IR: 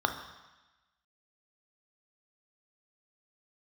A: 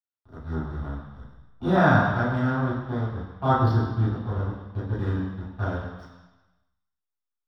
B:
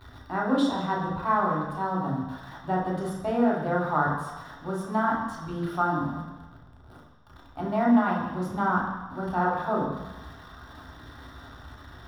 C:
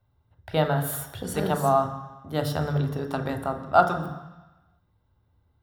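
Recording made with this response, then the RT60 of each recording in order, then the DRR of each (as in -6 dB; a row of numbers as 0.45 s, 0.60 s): C; 1.1 s, 1.1 s, 1.1 s; -13.5 dB, -4.5 dB, 5.0 dB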